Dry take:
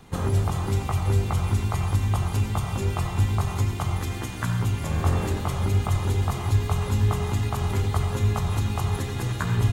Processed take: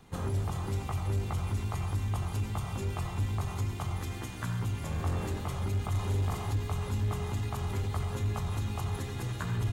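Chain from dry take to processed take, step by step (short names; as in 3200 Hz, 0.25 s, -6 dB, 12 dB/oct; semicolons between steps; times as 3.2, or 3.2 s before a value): 5.9–6.54 doubler 41 ms -3 dB; soft clip -16 dBFS, distortion -19 dB; gain -7 dB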